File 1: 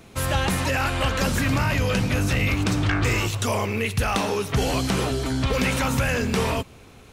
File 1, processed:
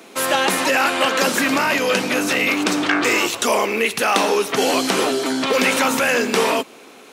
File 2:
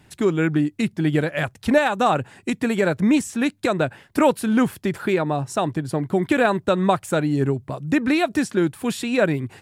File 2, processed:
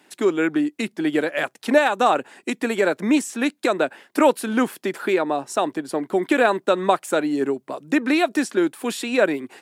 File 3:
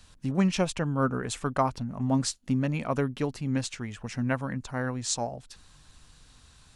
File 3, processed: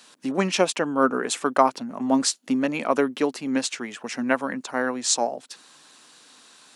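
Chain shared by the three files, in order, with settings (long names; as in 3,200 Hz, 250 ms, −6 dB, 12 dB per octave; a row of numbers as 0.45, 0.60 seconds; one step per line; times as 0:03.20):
high-pass filter 260 Hz 24 dB per octave
normalise the peak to −3 dBFS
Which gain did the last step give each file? +7.5, +1.5, +8.0 decibels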